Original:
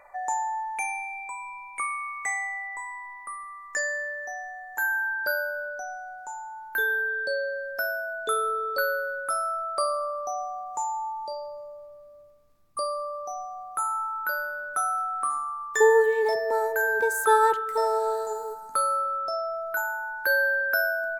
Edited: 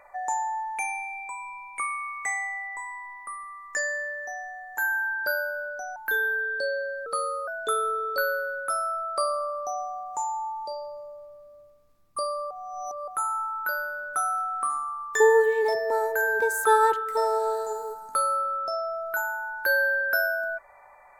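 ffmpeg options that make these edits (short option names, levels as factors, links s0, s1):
-filter_complex "[0:a]asplit=6[s0][s1][s2][s3][s4][s5];[s0]atrim=end=5.962[s6];[s1]atrim=start=6.628:end=7.734[s7];[s2]atrim=start=7.73:end=8.08,asetpts=PTS-STARTPTS,asetrate=37044,aresample=44100[s8];[s3]atrim=start=8.076:end=13.112[s9];[s4]atrim=start=13.108:end=13.682,asetpts=PTS-STARTPTS,areverse[s10];[s5]atrim=start=13.678[s11];[s6][s7]acrossfade=d=0.004:c1=hsin:c2=hsin[s12];[s12][s8]acrossfade=d=0.004:c1=hsin:c2=hsin[s13];[s13][s9]acrossfade=d=0.004:c1=hsin:c2=hsin[s14];[s14][s10]acrossfade=d=0.004:c1=hsin:c2=hsin[s15];[s15][s11]acrossfade=d=0.004:c1=hsin:c2=hsin"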